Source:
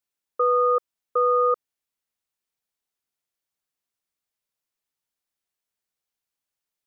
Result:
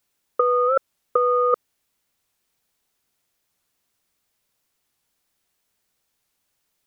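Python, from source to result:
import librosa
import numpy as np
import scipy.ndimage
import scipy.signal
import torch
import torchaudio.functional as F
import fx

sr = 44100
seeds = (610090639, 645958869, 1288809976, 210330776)

y = fx.low_shelf(x, sr, hz=370.0, db=3.5)
y = fx.over_compress(y, sr, threshold_db=-23.0, ratio=-0.5)
y = fx.record_warp(y, sr, rpm=45.0, depth_cents=160.0)
y = y * librosa.db_to_amplitude(6.5)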